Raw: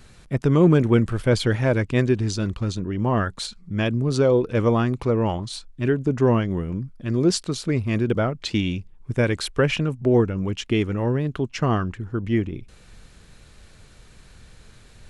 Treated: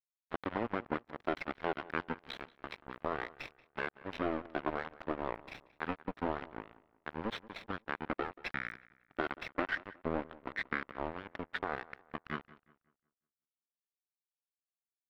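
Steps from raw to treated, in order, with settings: comb filter that takes the minimum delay 0.33 ms; gate -43 dBFS, range -10 dB; high-pass 910 Hz 12 dB/octave; compression 2.5:1, threshold -40 dBFS, peak gain reduction 11.5 dB; pitch shift -7.5 st; crossover distortion -41 dBFS; distance through air 400 m; filtered feedback delay 182 ms, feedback 36%, low-pass 3.2 kHz, level -19.5 dB; trim +10.5 dB

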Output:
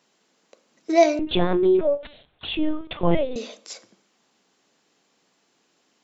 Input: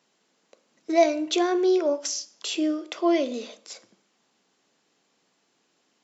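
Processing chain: 1.19–3.36 s: LPC vocoder at 8 kHz pitch kept; trim +3 dB

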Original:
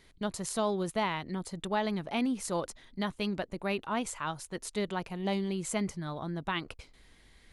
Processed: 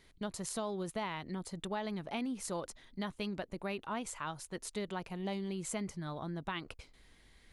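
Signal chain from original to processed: compression 3:1, threshold -32 dBFS, peak gain reduction 6 dB; trim -3 dB

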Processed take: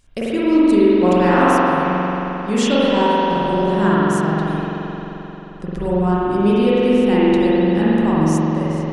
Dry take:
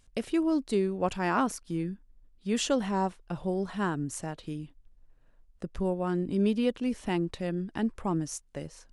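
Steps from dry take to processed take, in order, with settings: 1.91–2.48 s: low-pass 3.6 kHz; spring tank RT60 3.9 s, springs 44 ms, chirp 75 ms, DRR -9.5 dB; trim +5 dB

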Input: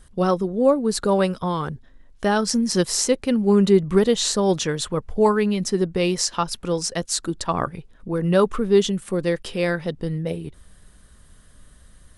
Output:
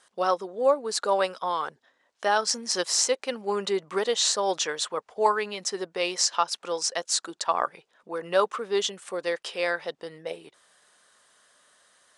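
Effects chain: Chebyshev band-pass 680–7200 Hz, order 2

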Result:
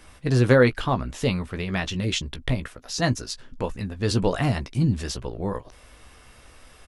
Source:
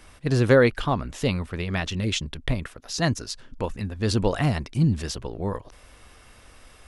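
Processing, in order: doubling 16 ms -9 dB

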